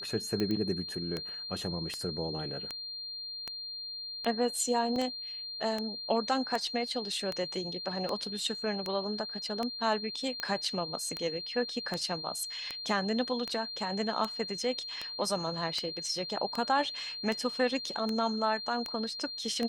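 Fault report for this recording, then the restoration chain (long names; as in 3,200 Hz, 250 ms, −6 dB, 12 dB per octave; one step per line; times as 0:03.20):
scratch tick 78 rpm −19 dBFS
whistle 4,200 Hz −38 dBFS
0:00.51: click −22 dBFS
0:04.96: drop-out 2.5 ms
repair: click removal
notch filter 4,200 Hz, Q 30
repair the gap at 0:04.96, 2.5 ms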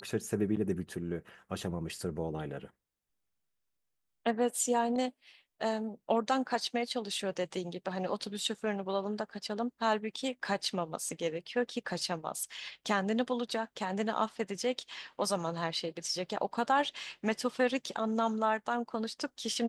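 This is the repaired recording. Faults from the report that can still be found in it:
none of them is left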